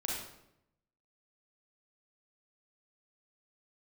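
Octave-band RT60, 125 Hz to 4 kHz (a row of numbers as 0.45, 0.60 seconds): 1.1, 0.95, 0.85, 0.75, 0.65, 0.60 seconds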